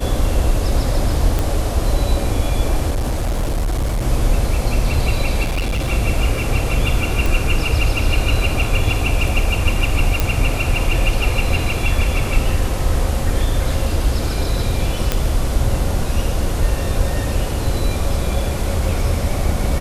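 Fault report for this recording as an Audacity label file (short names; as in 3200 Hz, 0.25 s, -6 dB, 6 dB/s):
1.390000	1.390000	pop
2.900000	4.040000	clipped -15.5 dBFS
5.430000	5.890000	clipped -16 dBFS
7.260000	7.260000	pop
10.200000	10.200000	pop
15.120000	15.120000	pop -2 dBFS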